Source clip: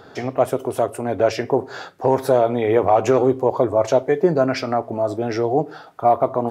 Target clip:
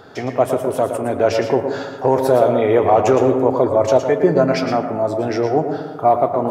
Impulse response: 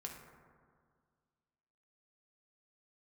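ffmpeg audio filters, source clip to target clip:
-filter_complex "[0:a]asplit=2[s0][s1];[1:a]atrim=start_sample=2205,asetrate=52920,aresample=44100,adelay=113[s2];[s1][s2]afir=irnorm=-1:irlink=0,volume=0.891[s3];[s0][s3]amix=inputs=2:normalize=0,volume=1.19"

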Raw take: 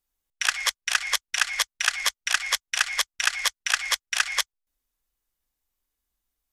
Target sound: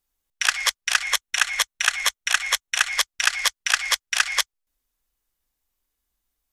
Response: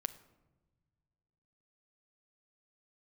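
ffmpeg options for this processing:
-filter_complex "[0:a]asettb=1/sr,asplit=3[s0][s1][s2];[s0]atrim=end=1.024[s3];[s1]atrim=start=1.02:end=2.92,asetpts=PTS-STARTPTS,afade=t=in:d=0.004:c=qsin,afade=t=out:st=1.896:d=0.004:c=qsin,bandreject=f=4800:w=6.8[s4];[s2]atrim=start=2.916[s5];[s3][s4]acrossfade=d=0.004:c1=hsin:c2=qsin[s6];[s6][s5]acrossfade=d=0.004:c1=qsin:c2=hsin,volume=1.41"

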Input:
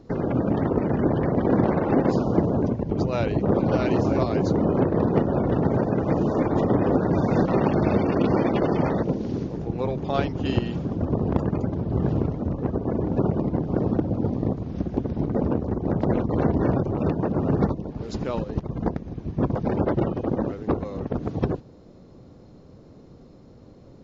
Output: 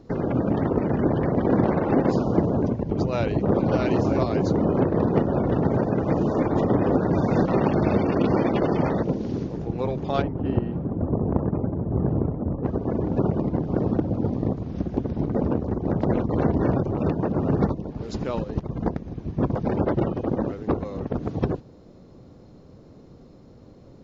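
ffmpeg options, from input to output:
-filter_complex "[0:a]asplit=3[s0][s1][s2];[s0]afade=t=out:st=10.21:d=0.02[s3];[s1]lowpass=1200,afade=t=in:st=10.21:d=0.02,afade=t=out:st=12.63:d=0.02[s4];[s2]afade=t=in:st=12.63:d=0.02[s5];[s3][s4][s5]amix=inputs=3:normalize=0"

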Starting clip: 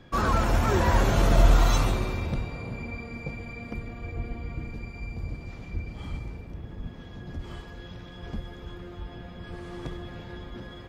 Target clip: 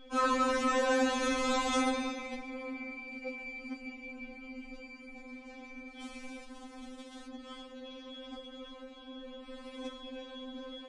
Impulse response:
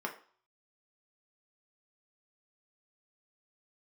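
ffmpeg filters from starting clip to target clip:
-filter_complex "[0:a]asettb=1/sr,asplit=3[s0][s1][s2];[s0]atrim=end=6.014[s3];[s1]atrim=start=6.01:end=7.27,asetpts=PTS-STARTPTS,afade=t=in:d=0.004:c=qsin,afade=t=out:st=1.256:d=0.004:c=qsin,aeval=exprs='val(0)*gte(abs(val(0)),0.0106)':c=same[s4];[s2]atrim=start=7.266[s5];[s3][s4]acrossfade=d=0.004:c1=hsin:c2=qsin[s6];[s6][s5]acrossfade=d=0.004:c1=qsin:c2=hsin,aresample=22050,aresample=44100,afftfilt=real='re*3.46*eq(mod(b,12),0)':imag='im*3.46*eq(mod(b,12),0)':win_size=2048:overlap=0.75"

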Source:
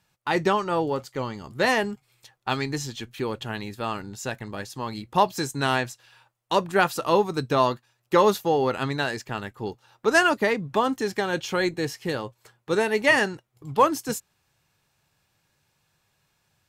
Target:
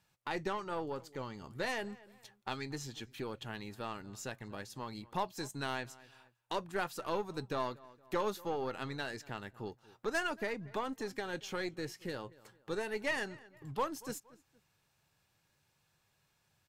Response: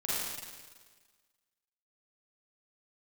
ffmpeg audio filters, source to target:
-filter_complex "[0:a]aeval=exprs='0.473*(cos(1*acos(clip(val(0)/0.473,-1,1)))-cos(1*PI/2))+0.0335*(cos(6*acos(clip(val(0)/0.473,-1,1)))-cos(6*PI/2))':c=same,asplit=2[s0][s1];[s1]adelay=232,lowpass=f=3000:p=1,volume=0.0631,asplit=2[s2][s3];[s3]adelay=232,lowpass=f=3000:p=1,volume=0.26[s4];[s0][s2][s4]amix=inputs=3:normalize=0,acompressor=threshold=0.00631:ratio=1.5,volume=0.531"

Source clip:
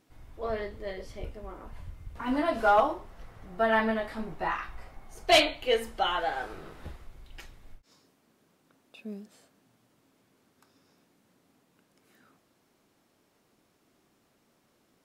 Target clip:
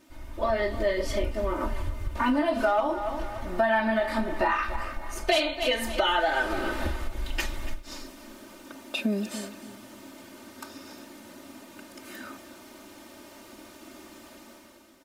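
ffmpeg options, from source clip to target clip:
-filter_complex "[0:a]asplit=2[s0][s1];[s1]alimiter=limit=0.0944:level=0:latency=1:release=79,volume=1.26[s2];[s0][s2]amix=inputs=2:normalize=0,aecho=1:1:3.3:0.98,dynaudnorm=f=140:g=9:m=3.76,asplit=2[s3][s4];[s4]aecho=0:1:285|570|855:0.141|0.0438|0.0136[s5];[s3][s5]amix=inputs=2:normalize=0,acompressor=threshold=0.0794:ratio=5,lowshelf=f=150:g=-4"

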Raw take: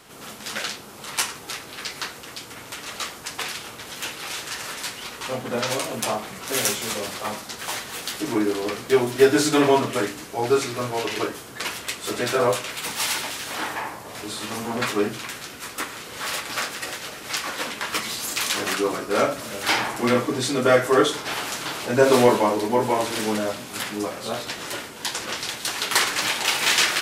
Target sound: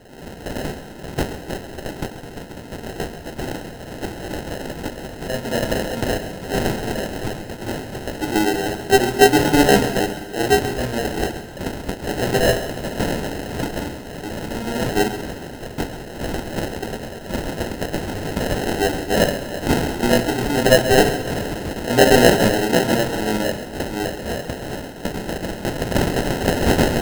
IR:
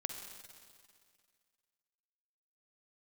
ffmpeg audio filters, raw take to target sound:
-filter_complex "[0:a]acrusher=samples=38:mix=1:aa=0.000001,asplit=2[s0][s1];[1:a]atrim=start_sample=2205,adelay=134[s2];[s1][s2]afir=irnorm=-1:irlink=0,volume=0.266[s3];[s0][s3]amix=inputs=2:normalize=0,volume=1.5"

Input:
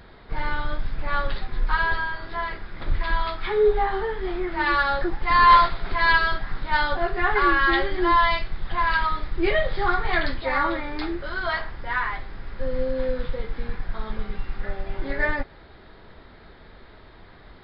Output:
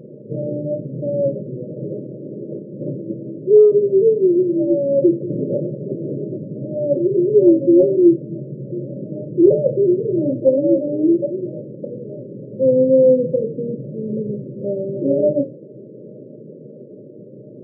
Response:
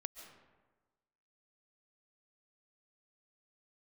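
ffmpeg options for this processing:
-af "afftfilt=real='re*between(b*sr/4096,110,620)':imag='im*between(b*sr/4096,110,620)':win_size=4096:overlap=0.75,apsyclip=10,flanger=delay=7.3:depth=9.4:regen=-69:speed=0.28:shape=triangular,bandreject=f=60:t=h:w=6,bandreject=f=120:t=h:w=6,bandreject=f=180:t=h:w=6,bandreject=f=240:t=h:w=6,bandreject=f=300:t=h:w=6"

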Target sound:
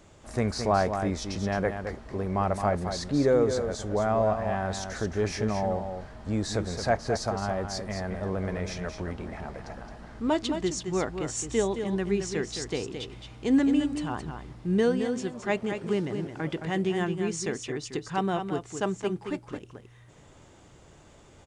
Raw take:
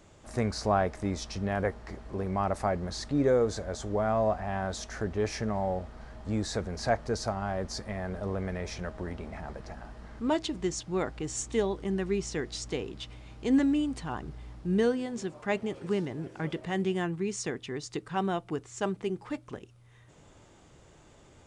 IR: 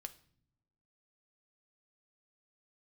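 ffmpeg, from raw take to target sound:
-af "aecho=1:1:218:0.422,volume=1.26"

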